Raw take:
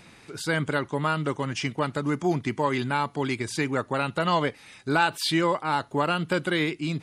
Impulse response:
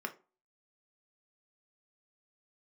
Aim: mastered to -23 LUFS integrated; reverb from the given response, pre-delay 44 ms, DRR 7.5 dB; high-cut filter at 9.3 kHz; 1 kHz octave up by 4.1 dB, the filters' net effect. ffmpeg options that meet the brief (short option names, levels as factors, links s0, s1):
-filter_complex "[0:a]lowpass=9300,equalizer=f=1000:t=o:g=5,asplit=2[s0][s1];[1:a]atrim=start_sample=2205,adelay=44[s2];[s1][s2]afir=irnorm=-1:irlink=0,volume=0.335[s3];[s0][s3]amix=inputs=2:normalize=0,volume=1.12"